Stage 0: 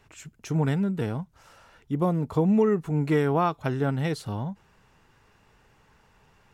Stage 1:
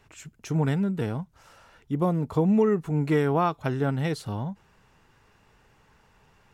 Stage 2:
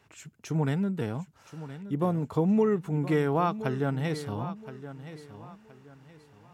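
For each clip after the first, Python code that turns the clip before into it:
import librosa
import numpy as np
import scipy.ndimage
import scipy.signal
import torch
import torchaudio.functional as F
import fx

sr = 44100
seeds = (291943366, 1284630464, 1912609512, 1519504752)

y1 = x
y2 = scipy.signal.sosfilt(scipy.signal.butter(2, 87.0, 'highpass', fs=sr, output='sos'), y1)
y2 = fx.echo_feedback(y2, sr, ms=1021, feedback_pct=30, wet_db=-13.5)
y2 = y2 * 10.0 ** (-2.5 / 20.0)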